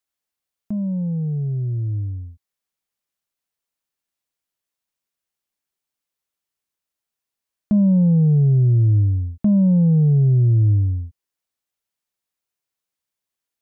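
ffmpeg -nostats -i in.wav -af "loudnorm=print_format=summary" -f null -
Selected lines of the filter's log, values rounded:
Input Integrated:    -18.0 LUFS
Input True Peak:     -11.9 dBTP
Input LRA:            12.4 LU
Input Threshold:     -28.8 LUFS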